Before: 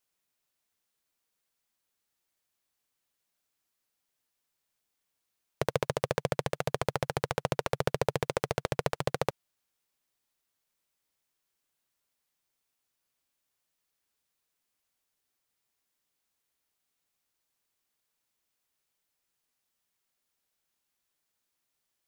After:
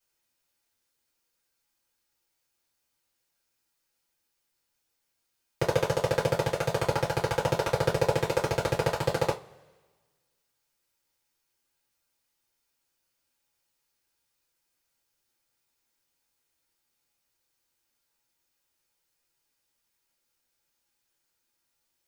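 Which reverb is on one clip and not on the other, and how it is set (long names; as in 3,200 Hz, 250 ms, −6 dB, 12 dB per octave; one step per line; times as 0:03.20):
coupled-rooms reverb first 0.2 s, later 1.5 s, from −27 dB, DRR −7 dB
level −4 dB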